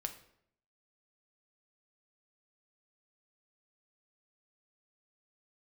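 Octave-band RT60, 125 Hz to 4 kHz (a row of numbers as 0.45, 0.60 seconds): 0.80, 0.80, 0.75, 0.65, 0.60, 0.50 seconds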